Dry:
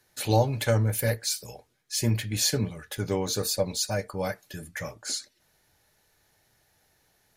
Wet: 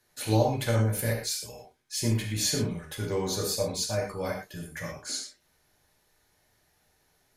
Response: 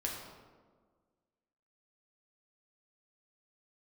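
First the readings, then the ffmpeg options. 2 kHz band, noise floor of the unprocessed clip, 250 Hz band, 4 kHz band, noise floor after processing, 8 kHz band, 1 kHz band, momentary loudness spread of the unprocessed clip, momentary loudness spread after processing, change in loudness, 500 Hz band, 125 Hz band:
−2.0 dB, −68 dBFS, 0.0 dB, −2.0 dB, −70 dBFS, −2.0 dB, −1.5 dB, 11 LU, 12 LU, −1.5 dB, −1.0 dB, −1.5 dB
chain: -filter_complex "[1:a]atrim=start_sample=2205,atrim=end_sample=3528,asetrate=27342,aresample=44100[link_01];[0:a][link_01]afir=irnorm=-1:irlink=0,volume=-5dB"

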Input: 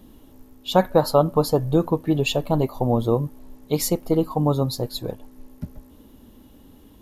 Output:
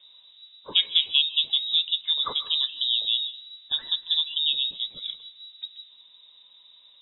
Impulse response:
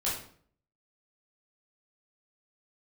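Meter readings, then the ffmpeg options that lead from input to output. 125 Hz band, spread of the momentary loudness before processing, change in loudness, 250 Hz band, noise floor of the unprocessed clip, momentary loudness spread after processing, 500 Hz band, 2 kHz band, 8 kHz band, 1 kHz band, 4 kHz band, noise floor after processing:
below −35 dB, 15 LU, −1.0 dB, below −30 dB, −50 dBFS, 18 LU, below −30 dB, −3.0 dB, below −40 dB, −17.0 dB, +13.5 dB, −55 dBFS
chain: -filter_complex "[0:a]lowpass=frequency=3300:width_type=q:width=0.5098,lowpass=frequency=3300:width_type=q:width=0.6013,lowpass=frequency=3300:width_type=q:width=0.9,lowpass=frequency=3300:width_type=q:width=2.563,afreqshift=-3900,asplit=2[link_01][link_02];[1:a]atrim=start_sample=2205,adelay=132[link_03];[link_02][link_03]afir=irnorm=-1:irlink=0,volume=-23dB[link_04];[link_01][link_04]amix=inputs=2:normalize=0,volume=-5dB"

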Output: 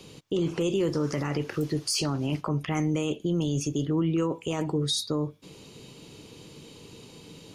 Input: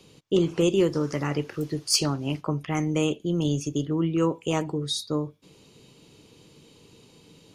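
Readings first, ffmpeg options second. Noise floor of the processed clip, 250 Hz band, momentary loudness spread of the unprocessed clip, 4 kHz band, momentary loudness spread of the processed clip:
−50 dBFS, −2.0 dB, 7 LU, −2.0 dB, 20 LU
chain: -filter_complex "[0:a]asplit=2[link_01][link_02];[link_02]acompressor=threshold=-32dB:ratio=6,volume=0dB[link_03];[link_01][link_03]amix=inputs=2:normalize=0,alimiter=limit=-18.5dB:level=0:latency=1:release=18"

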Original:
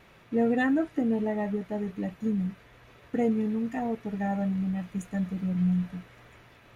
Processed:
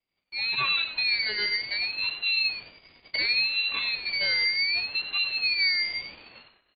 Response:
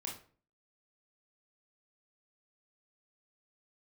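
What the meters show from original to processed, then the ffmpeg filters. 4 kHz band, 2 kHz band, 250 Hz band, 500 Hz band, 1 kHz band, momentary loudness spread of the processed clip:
can't be measured, +14.5 dB, −29.0 dB, −15.5 dB, −4.0 dB, 7 LU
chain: -af "agate=range=-26dB:threshold=-52dB:ratio=16:detection=peak,equalizer=frequency=540:width=0.48:gain=-14,dynaudnorm=framelen=330:gausssize=3:maxgain=14dB,crystalizer=i=2:c=0,aresample=11025,asoftclip=type=tanh:threshold=-18.5dB,aresample=44100,aecho=1:1:96:0.316,lowpass=frequency=3100:width_type=q:width=0.5098,lowpass=frequency=3100:width_type=q:width=0.6013,lowpass=frequency=3100:width_type=q:width=0.9,lowpass=frequency=3100:width_type=q:width=2.563,afreqshift=-3600,aeval=exprs='val(0)*sin(2*PI*980*n/s+980*0.35/0.68*sin(2*PI*0.68*n/s))':channel_layout=same"

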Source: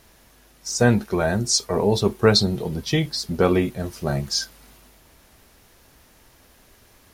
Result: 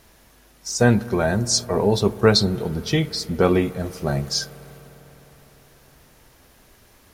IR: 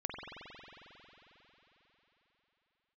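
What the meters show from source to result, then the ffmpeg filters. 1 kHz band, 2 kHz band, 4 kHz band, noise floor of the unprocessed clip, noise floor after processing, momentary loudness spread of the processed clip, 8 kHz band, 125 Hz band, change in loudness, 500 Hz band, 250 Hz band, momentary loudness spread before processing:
+1.0 dB, +0.5 dB, 0.0 dB, −55 dBFS, −54 dBFS, 10 LU, 0.0 dB, +1.0 dB, +0.5 dB, +1.0 dB, +1.0 dB, 10 LU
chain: -filter_complex "[0:a]asplit=2[link_01][link_02];[1:a]atrim=start_sample=2205,asetrate=39690,aresample=44100,lowpass=2700[link_03];[link_02][link_03]afir=irnorm=-1:irlink=0,volume=-17.5dB[link_04];[link_01][link_04]amix=inputs=2:normalize=0"

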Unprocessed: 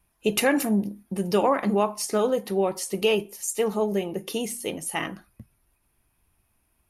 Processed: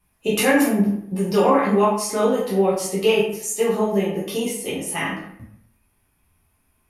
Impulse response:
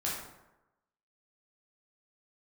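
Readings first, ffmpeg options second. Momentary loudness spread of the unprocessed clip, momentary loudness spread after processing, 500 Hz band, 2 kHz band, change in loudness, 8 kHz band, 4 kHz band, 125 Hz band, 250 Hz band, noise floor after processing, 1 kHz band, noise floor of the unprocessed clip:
8 LU, 9 LU, +5.0 dB, +5.5 dB, +5.0 dB, +3.5 dB, +3.0 dB, +6.0 dB, +5.5 dB, −66 dBFS, +5.5 dB, −71 dBFS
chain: -filter_complex "[1:a]atrim=start_sample=2205,asetrate=61740,aresample=44100[link_01];[0:a][link_01]afir=irnorm=-1:irlink=0,volume=2.5dB"

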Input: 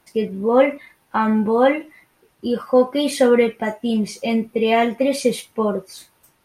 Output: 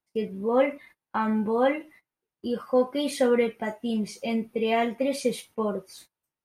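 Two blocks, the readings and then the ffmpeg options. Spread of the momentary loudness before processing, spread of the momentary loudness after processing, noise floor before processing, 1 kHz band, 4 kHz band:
9 LU, 9 LU, −62 dBFS, −7.5 dB, −7.5 dB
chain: -af "agate=range=-23dB:threshold=-43dB:ratio=16:detection=peak,volume=-7.5dB"

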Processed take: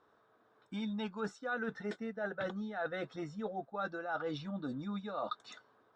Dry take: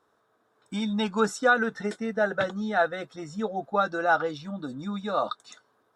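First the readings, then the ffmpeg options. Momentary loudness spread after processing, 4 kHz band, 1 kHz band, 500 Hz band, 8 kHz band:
4 LU, −11.5 dB, −14.0 dB, −12.0 dB, below −15 dB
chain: -af "lowpass=4000,areverse,acompressor=threshold=-36dB:ratio=6,areverse"

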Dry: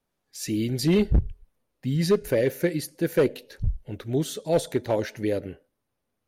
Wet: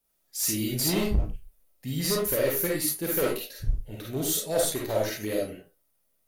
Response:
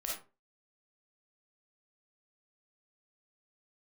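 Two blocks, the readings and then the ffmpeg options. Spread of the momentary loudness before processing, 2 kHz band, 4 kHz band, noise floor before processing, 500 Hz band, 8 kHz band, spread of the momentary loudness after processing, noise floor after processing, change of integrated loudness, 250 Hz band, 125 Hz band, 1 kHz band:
12 LU, −0.5 dB, +3.5 dB, −80 dBFS, −3.5 dB, +9.5 dB, 12 LU, −72 dBFS, −1.5 dB, −5.0 dB, −5.5 dB, 0.0 dB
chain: -filter_complex "[0:a]aemphasis=mode=production:type=75fm,asoftclip=type=hard:threshold=-18.5dB[link_01];[1:a]atrim=start_sample=2205,afade=type=out:start_time=0.22:duration=0.01,atrim=end_sample=10143[link_02];[link_01][link_02]afir=irnorm=-1:irlink=0,volume=-2.5dB"

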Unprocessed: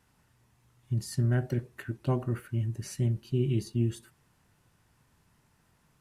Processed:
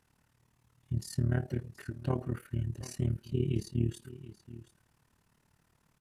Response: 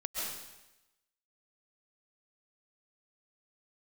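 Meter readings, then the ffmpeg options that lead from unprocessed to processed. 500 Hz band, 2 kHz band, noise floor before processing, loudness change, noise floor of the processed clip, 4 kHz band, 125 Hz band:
−3.5 dB, −4.0 dB, −69 dBFS, −3.5 dB, −73 dBFS, −3.5 dB, −3.5 dB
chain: -filter_complex "[0:a]tremolo=f=37:d=0.824,asplit=2[link_01][link_02];[link_02]aecho=0:1:727:0.15[link_03];[link_01][link_03]amix=inputs=2:normalize=0"

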